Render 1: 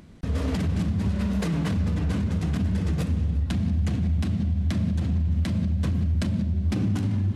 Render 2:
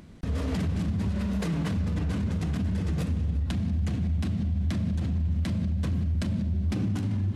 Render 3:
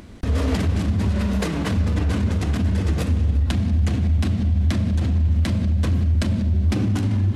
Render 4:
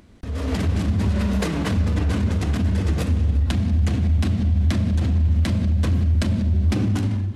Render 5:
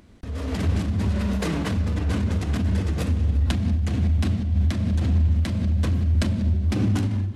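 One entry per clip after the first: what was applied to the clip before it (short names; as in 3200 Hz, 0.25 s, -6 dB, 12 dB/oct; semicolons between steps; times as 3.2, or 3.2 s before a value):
limiter -21 dBFS, peak gain reduction 4 dB
bell 160 Hz -10.5 dB 0.44 oct; gain +9 dB
AGC gain up to 11.5 dB; gain -9 dB
noise-modulated level, depth 50%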